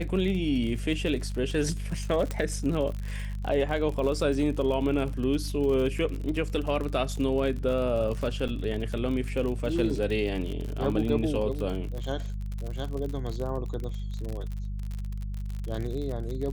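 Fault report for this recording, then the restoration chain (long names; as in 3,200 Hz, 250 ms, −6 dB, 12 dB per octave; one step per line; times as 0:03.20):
surface crackle 49 per second −32 dBFS
mains hum 50 Hz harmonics 4 −33 dBFS
0:02.31: click −17 dBFS
0:08.48–0:08.49: drop-out 7.3 ms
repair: click removal
hum removal 50 Hz, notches 4
repair the gap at 0:08.48, 7.3 ms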